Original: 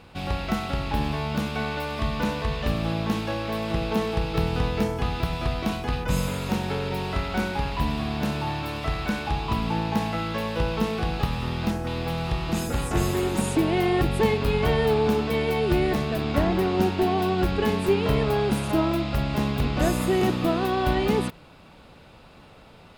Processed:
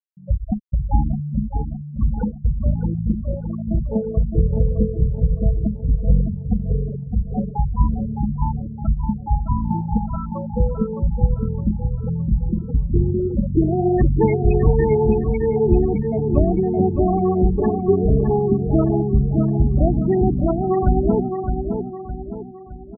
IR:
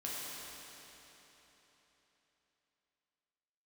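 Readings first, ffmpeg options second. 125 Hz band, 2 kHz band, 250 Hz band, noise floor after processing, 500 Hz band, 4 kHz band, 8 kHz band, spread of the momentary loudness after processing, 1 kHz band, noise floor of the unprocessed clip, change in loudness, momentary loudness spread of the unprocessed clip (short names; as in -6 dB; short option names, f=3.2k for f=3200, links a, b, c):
+7.5 dB, -14.0 dB, +5.0 dB, -34 dBFS, +4.0 dB, under -40 dB, under -40 dB, 8 LU, -0.5 dB, -49 dBFS, +5.0 dB, 6 LU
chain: -filter_complex "[0:a]afftfilt=real='re*gte(hypot(re,im),0.224)':imag='im*gte(hypot(re,im),0.224)':win_size=1024:overlap=0.75,lowshelf=f=71:g=10,asplit=2[a][b];[b]adelay=613,lowpass=f=2.9k:p=1,volume=-6dB,asplit=2[c][d];[d]adelay=613,lowpass=f=2.9k:p=1,volume=0.45,asplit=2[e][f];[f]adelay=613,lowpass=f=2.9k:p=1,volume=0.45,asplit=2[g][h];[h]adelay=613,lowpass=f=2.9k:p=1,volume=0.45,asplit=2[i][j];[j]adelay=613,lowpass=f=2.9k:p=1,volume=0.45[k];[a][c][e][g][i][k]amix=inputs=6:normalize=0,volume=4dB"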